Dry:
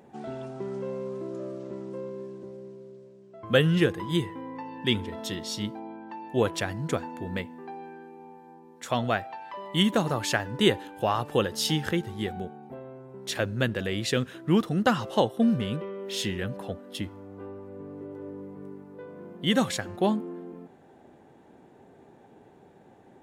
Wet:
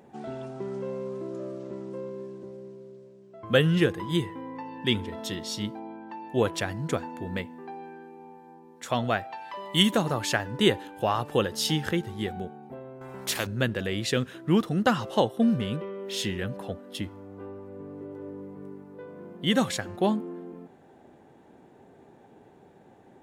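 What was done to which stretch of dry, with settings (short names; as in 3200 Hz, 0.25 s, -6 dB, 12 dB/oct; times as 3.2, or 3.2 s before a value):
9.32–9.96 high shelf 2900 Hz +8 dB
13.01–13.47 spectral compressor 2:1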